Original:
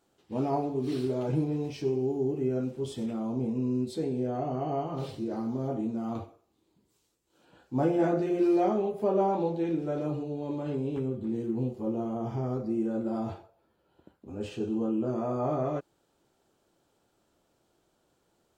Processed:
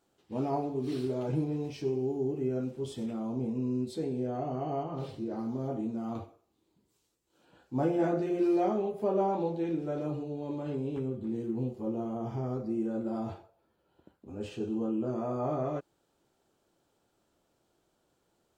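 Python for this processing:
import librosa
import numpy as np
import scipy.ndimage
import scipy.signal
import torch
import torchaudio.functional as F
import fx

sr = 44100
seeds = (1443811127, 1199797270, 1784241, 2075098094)

y = fx.high_shelf(x, sr, hz=3800.0, db=-6.0, at=(4.83, 5.39))
y = F.gain(torch.from_numpy(y), -2.5).numpy()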